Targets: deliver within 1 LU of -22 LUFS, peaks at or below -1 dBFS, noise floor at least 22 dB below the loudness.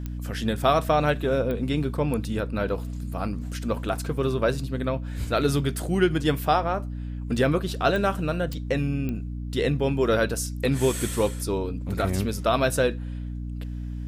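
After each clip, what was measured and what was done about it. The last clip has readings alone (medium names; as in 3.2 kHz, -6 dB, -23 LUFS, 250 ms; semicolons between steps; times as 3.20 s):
clicks found 5; hum 60 Hz; highest harmonic 300 Hz; hum level -30 dBFS; loudness -26.0 LUFS; peak level -7.5 dBFS; loudness target -22.0 LUFS
-> de-click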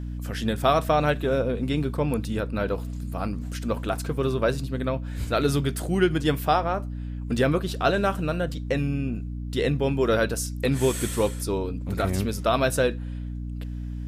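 clicks found 0; hum 60 Hz; highest harmonic 300 Hz; hum level -30 dBFS
-> de-hum 60 Hz, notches 5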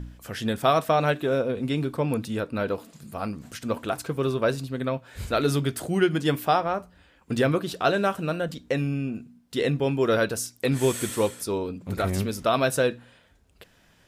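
hum not found; loudness -26.0 LUFS; peak level -8.5 dBFS; loudness target -22.0 LUFS
-> trim +4 dB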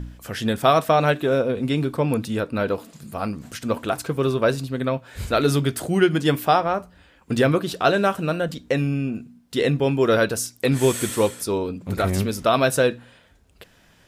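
loudness -22.0 LUFS; peak level -4.5 dBFS; noise floor -56 dBFS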